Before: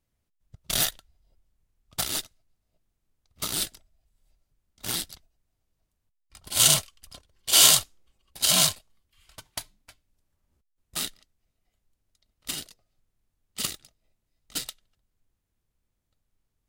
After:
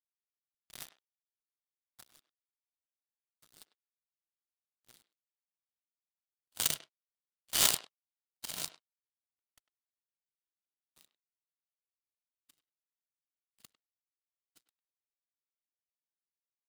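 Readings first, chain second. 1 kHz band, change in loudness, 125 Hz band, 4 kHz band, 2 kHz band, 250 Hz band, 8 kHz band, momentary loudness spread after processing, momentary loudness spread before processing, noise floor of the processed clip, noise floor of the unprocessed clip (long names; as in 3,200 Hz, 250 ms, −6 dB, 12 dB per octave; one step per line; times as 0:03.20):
−12.5 dB, −8.5 dB, −19.0 dB, −14.5 dB, −11.5 dB, −16.0 dB, −14.0 dB, 22 LU, 22 LU, below −85 dBFS, −80 dBFS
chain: power curve on the samples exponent 3
far-end echo of a speakerphone 100 ms, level −14 dB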